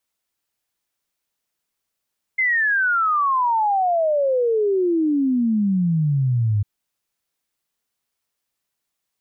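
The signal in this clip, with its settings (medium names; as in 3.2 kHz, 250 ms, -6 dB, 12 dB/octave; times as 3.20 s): log sweep 2.1 kHz -> 100 Hz 4.25 s -16 dBFS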